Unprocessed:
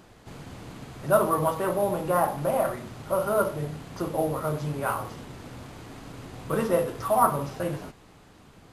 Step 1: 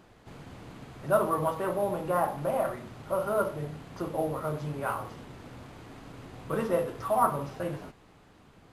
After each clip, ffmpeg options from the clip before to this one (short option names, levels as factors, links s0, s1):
-af "bass=f=250:g=-1,treble=f=4000:g=-5,volume=0.668"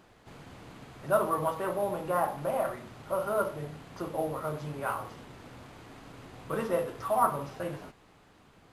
-af "lowshelf=f=460:g=-4"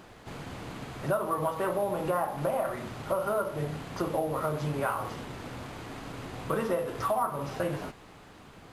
-af "acompressor=threshold=0.02:ratio=6,volume=2.51"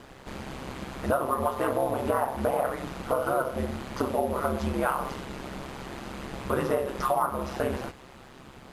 -af "aeval=exprs='val(0)*sin(2*PI*67*n/s)':c=same,volume=1.88"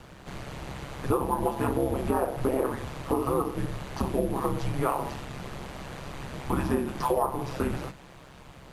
-af "afreqshift=-200"